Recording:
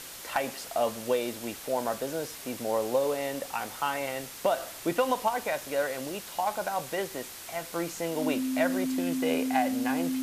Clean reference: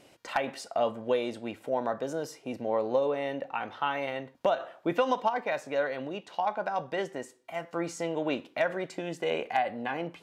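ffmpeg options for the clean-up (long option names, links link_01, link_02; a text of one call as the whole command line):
ffmpeg -i in.wav -af "bandreject=frequency=260:width=30,afwtdn=0.0079" out.wav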